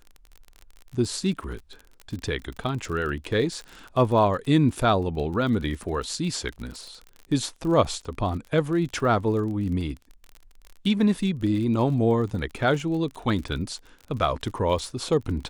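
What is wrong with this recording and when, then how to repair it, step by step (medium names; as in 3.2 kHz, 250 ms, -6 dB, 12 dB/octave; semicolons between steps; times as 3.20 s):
crackle 37 per s -33 dBFS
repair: de-click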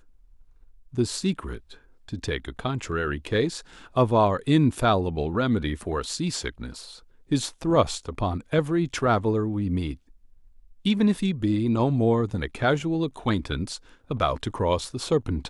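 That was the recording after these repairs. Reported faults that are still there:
nothing left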